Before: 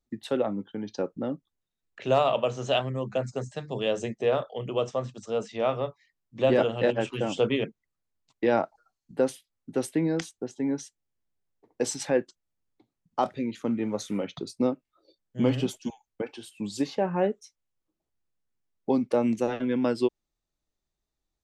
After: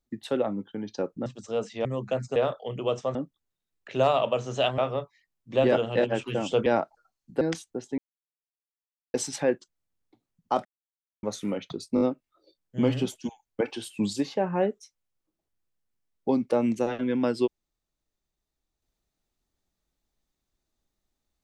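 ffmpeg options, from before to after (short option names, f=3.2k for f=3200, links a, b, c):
-filter_complex "[0:a]asplit=17[a][b][c][d][e][f][g][h][i][j][k][l][m][n][o][p][q];[a]atrim=end=1.262[r];[b]atrim=start=5.048:end=5.642[s];[c]atrim=start=2.888:end=3.402[t];[d]atrim=start=4.258:end=5.052[u];[e]atrim=start=1.258:end=2.892[v];[f]atrim=start=5.638:end=7.522[w];[g]atrim=start=8.468:end=9.222[x];[h]atrim=start=10.078:end=10.65,asetpts=PTS-STARTPTS,afade=t=out:st=0.568:d=0.004:c=hsin[y];[i]atrim=start=10.65:end=11.81,asetpts=PTS-STARTPTS,volume=0[z];[j]atrim=start=11.81:end=13.32,asetpts=PTS-STARTPTS,afade=t=in:d=0.004:c=hsin,afade=t=out:st=1.506:d=0.004:c=hsin[aa];[k]atrim=start=13.32:end=13.9,asetpts=PTS-STARTPTS,volume=0[ab];[l]atrim=start=13.9:end=14.642,asetpts=PTS-STARTPTS,afade=t=in:d=0.004:c=hsin[ac];[m]atrim=start=14.618:end=14.642[ad];[n]atrim=start=14.618:end=14.642[ae];[o]atrim=start=14.618:end=16.212[af];[p]atrim=start=16.208:end=16.742,asetpts=PTS-STARTPTS,volume=6.5dB[ag];[q]atrim=start=16.738[ah];[r][s]acrossfade=d=0.004:c1=hsin:c2=hsin[ai];[ai][t]acrossfade=d=0.004:c1=hsin:c2=hsin[aj];[aj][u]acrossfade=d=0.004:c1=hsin:c2=hsin[ak];[ak][v]acrossfade=d=0.004:c1=hsin:c2=hsin[al];[al][w]acrossfade=d=0.004:c1=hsin:c2=hsin[am];[am][x]acrossfade=d=0.004:c1=hsin:c2=hsin[an];[y][z][aa][ab][ac]concat=n=5:v=0:a=1[ao];[an][ao]acrossfade=d=0.004:c1=hsin:c2=hsin[ap];[ap][ad]acrossfade=d=0.004:c1=hsin:c2=hsin[aq];[aq][ae]acrossfade=d=0.004:c1=hsin:c2=hsin[ar];[ar][af]acrossfade=d=0.004:c1=hsin:c2=hsin[as];[as][ag]acrossfade=d=0.004:c1=hsin:c2=hsin[at];[at][ah]acrossfade=d=0.004:c1=hsin:c2=hsin"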